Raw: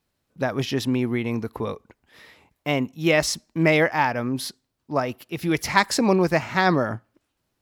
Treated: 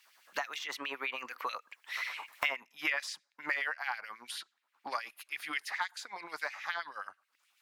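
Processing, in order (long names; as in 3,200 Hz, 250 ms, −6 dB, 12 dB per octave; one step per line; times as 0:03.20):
source passing by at 0:02.43, 34 m/s, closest 11 metres
auto-filter high-pass sine 9.4 Hz 950–2,500 Hz
multiband upward and downward compressor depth 100%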